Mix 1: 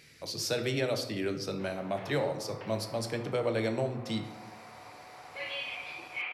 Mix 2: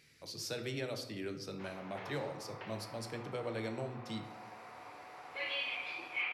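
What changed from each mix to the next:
speech -8.0 dB; master: add bell 620 Hz -3 dB 0.68 oct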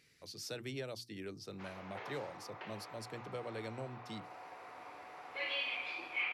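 reverb: off

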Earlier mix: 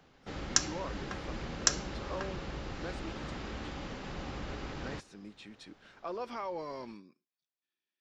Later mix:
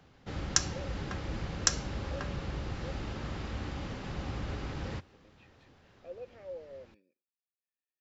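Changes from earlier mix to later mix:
speech: add vowel filter e; master: add bell 91 Hz +9 dB 1.4 oct

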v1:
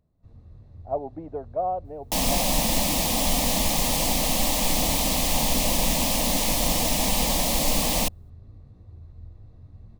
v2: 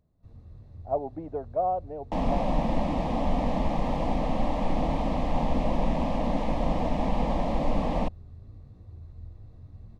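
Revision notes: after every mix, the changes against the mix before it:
second sound: add LPF 1200 Hz 12 dB/oct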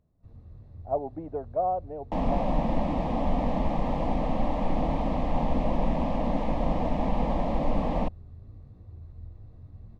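master: add high shelf 3900 Hz -8.5 dB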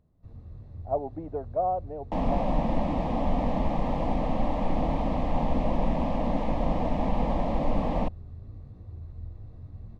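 first sound +3.5 dB

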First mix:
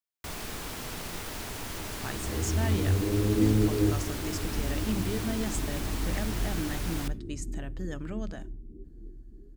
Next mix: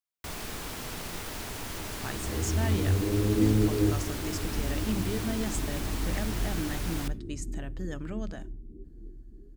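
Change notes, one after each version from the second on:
none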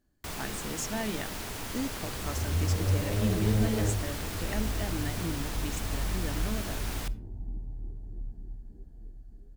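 speech: entry -1.65 s; second sound: remove synth low-pass 350 Hz, resonance Q 4.1

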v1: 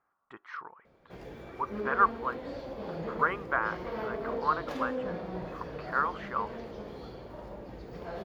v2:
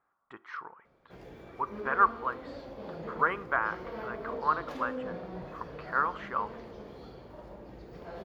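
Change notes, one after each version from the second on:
background -6.0 dB; reverb: on, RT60 0.70 s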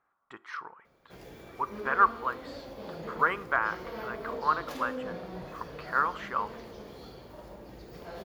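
master: remove LPF 2100 Hz 6 dB/oct

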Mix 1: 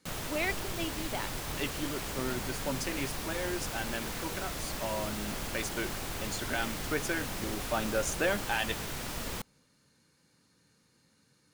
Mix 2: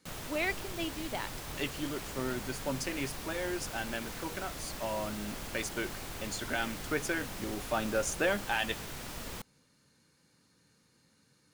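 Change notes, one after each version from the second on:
background -4.5 dB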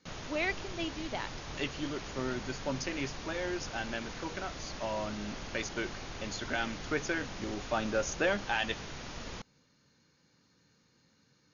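master: add brick-wall FIR low-pass 6900 Hz

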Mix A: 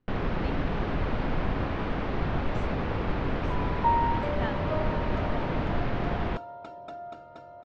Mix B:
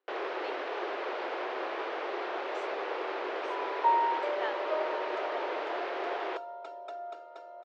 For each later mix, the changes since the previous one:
master: add Chebyshev high-pass 360 Hz, order 5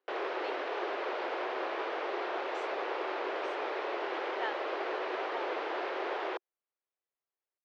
second sound: muted

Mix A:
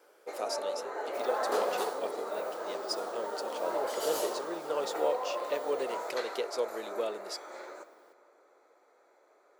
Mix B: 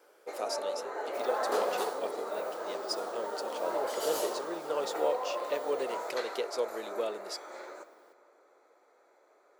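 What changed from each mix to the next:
none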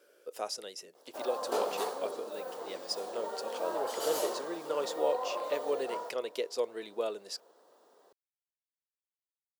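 first sound: muted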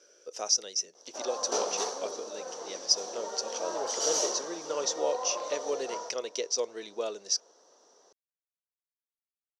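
master: add synth low-pass 5900 Hz, resonance Q 14

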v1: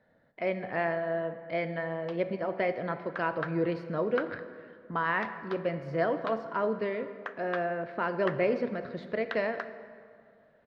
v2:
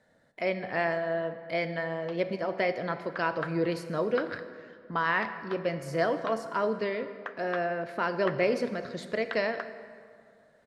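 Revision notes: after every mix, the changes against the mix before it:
speech: remove air absorption 300 m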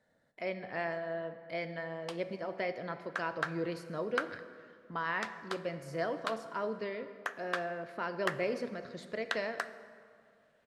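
speech -7.5 dB; background: remove air absorption 260 m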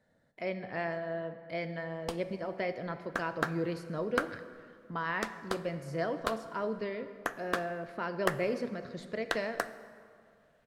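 background: remove band-pass 2400 Hz, Q 0.55; master: add low shelf 250 Hz +7 dB

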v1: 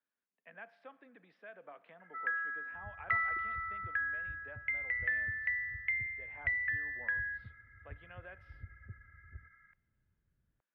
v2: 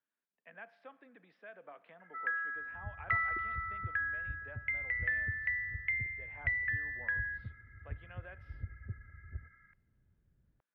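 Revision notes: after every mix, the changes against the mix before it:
second sound +7.0 dB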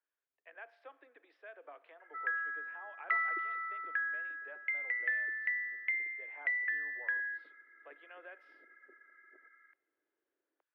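master: add steep high-pass 300 Hz 72 dB/oct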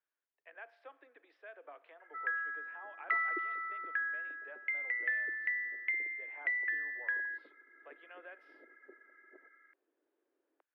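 first sound: send off; second sound +7.5 dB

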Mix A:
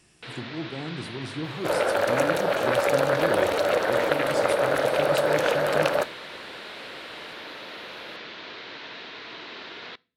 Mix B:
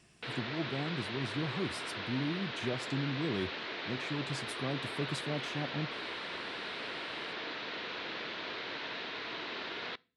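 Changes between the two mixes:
speech: send off; second sound: muted; master: add high shelf 9400 Hz -10 dB

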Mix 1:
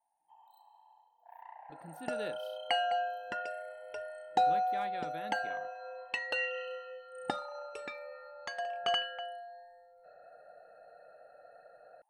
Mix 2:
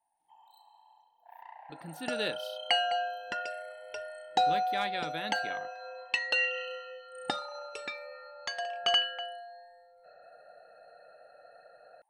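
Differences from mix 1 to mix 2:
speech +5.5 dB; master: add bell 4600 Hz +10 dB 2.1 oct

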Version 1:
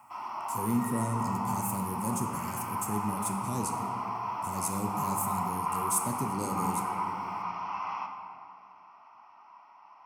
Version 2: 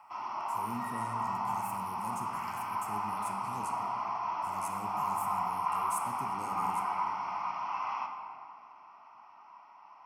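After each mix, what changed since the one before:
speech -12.0 dB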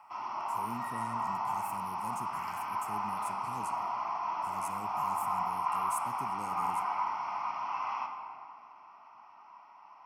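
speech: send -9.0 dB

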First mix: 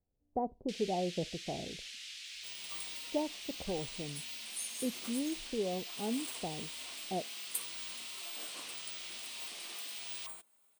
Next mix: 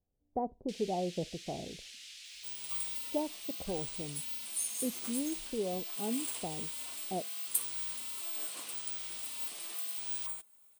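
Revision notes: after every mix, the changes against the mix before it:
first sound -5.5 dB; master: add high shelf 6100 Hz +8 dB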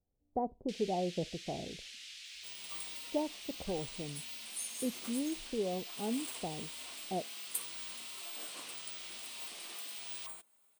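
first sound +3.0 dB; master: add high shelf 6100 Hz -8 dB

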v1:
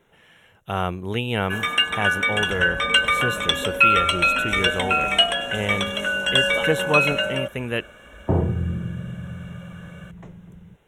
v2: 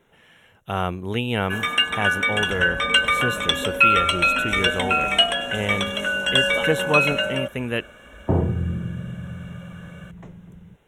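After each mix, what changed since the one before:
master: add bell 250 Hz +3.5 dB 0.22 oct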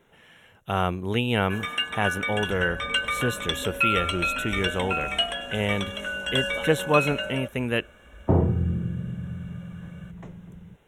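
first sound -7.5 dB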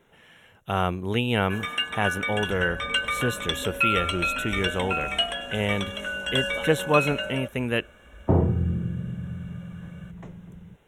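none

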